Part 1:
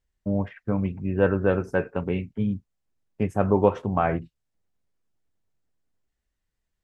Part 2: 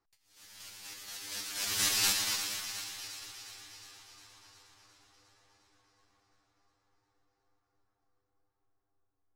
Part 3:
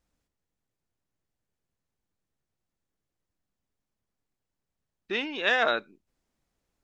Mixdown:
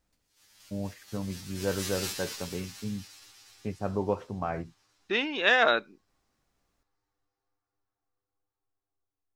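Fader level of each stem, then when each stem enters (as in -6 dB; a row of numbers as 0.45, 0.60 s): -9.5, -7.5, +2.0 dB; 0.45, 0.00, 0.00 s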